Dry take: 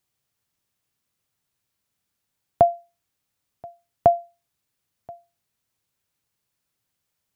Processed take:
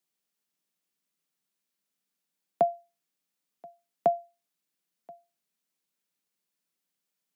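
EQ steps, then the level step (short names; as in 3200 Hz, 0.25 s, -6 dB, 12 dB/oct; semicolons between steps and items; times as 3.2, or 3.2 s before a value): steep high-pass 160 Hz 72 dB/oct; bell 950 Hz -3.5 dB 1.8 oct; -5.0 dB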